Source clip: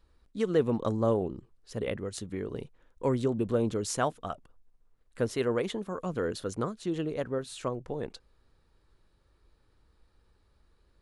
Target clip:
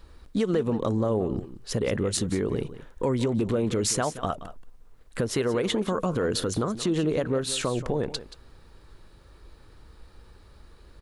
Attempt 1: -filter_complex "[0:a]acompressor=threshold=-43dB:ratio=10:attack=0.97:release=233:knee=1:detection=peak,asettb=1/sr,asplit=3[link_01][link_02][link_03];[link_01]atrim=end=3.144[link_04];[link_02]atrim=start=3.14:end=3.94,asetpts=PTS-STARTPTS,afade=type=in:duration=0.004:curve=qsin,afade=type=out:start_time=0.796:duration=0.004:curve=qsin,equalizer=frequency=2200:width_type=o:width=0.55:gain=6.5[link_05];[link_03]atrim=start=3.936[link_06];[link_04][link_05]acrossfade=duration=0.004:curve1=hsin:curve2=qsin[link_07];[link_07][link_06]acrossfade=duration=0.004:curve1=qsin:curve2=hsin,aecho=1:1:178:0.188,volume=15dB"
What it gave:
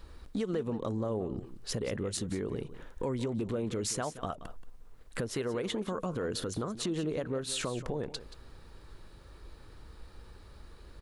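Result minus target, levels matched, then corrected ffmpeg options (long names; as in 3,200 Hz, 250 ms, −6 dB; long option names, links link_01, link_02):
downward compressor: peak gain reduction +8 dB
-filter_complex "[0:a]acompressor=threshold=-34dB:ratio=10:attack=0.97:release=233:knee=1:detection=peak,asettb=1/sr,asplit=3[link_01][link_02][link_03];[link_01]atrim=end=3.144[link_04];[link_02]atrim=start=3.14:end=3.94,asetpts=PTS-STARTPTS,afade=type=in:duration=0.004:curve=qsin,afade=type=out:start_time=0.796:duration=0.004:curve=qsin,equalizer=frequency=2200:width_type=o:width=0.55:gain=6.5[link_05];[link_03]atrim=start=3.936[link_06];[link_04][link_05]acrossfade=duration=0.004:curve1=hsin:curve2=qsin[link_07];[link_07][link_06]acrossfade=duration=0.004:curve1=qsin:curve2=hsin,aecho=1:1:178:0.188,volume=15dB"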